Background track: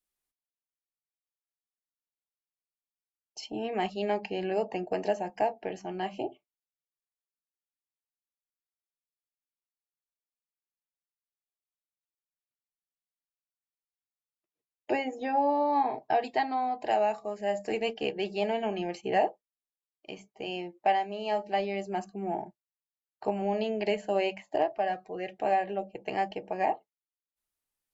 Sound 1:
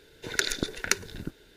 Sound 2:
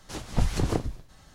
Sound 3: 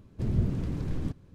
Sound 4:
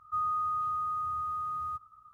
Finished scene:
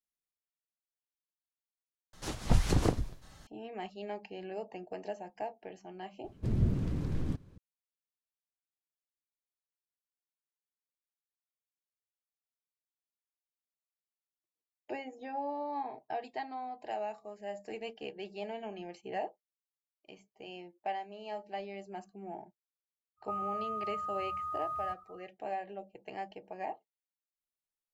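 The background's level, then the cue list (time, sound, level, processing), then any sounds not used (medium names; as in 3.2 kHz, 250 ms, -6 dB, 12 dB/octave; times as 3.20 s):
background track -11 dB
2.13 s: replace with 2 -1.5 dB
6.24 s: add 3 -2 dB
23.16 s: add 4 -5 dB, fades 0.10 s + gain riding within 4 dB
not used: 1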